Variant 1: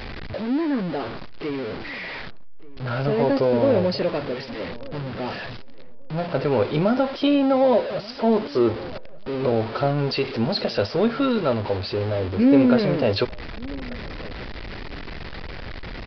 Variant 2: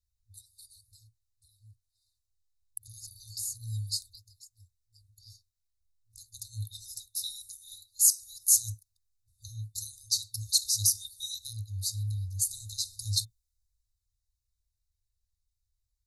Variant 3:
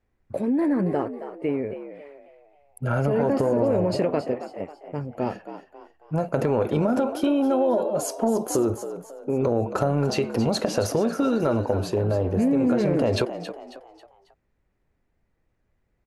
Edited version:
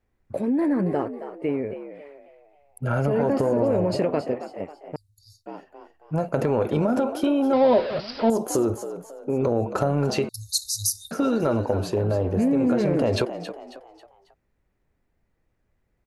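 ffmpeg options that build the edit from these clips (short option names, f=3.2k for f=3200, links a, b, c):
-filter_complex "[1:a]asplit=2[a][b];[2:a]asplit=4[c][d][e][f];[c]atrim=end=4.962[g];[a]atrim=start=4.958:end=5.462[h];[d]atrim=start=5.458:end=7.532[i];[0:a]atrim=start=7.528:end=8.302[j];[e]atrim=start=8.298:end=10.292[k];[b]atrim=start=10.288:end=11.112[l];[f]atrim=start=11.108[m];[g][h]acrossfade=d=0.004:c1=hsin:c2=hsin[n];[n][i]acrossfade=d=0.004:c1=hsin:c2=hsin[o];[o][j]acrossfade=d=0.004:c1=hsin:c2=hsin[p];[p][k]acrossfade=d=0.004:c1=hsin:c2=hsin[q];[q][l]acrossfade=d=0.004:c1=hsin:c2=hsin[r];[r][m]acrossfade=d=0.004:c1=hsin:c2=hsin"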